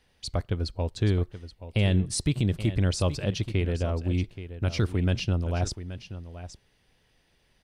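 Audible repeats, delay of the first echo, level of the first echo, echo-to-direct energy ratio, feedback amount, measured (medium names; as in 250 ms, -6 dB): 1, 827 ms, -13.0 dB, -13.0 dB, no regular repeats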